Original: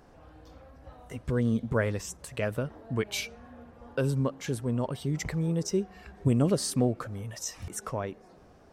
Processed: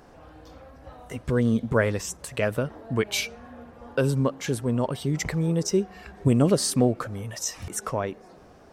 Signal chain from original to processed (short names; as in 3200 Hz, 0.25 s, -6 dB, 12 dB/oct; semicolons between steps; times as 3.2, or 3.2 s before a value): low shelf 160 Hz -4.5 dB; gain +6 dB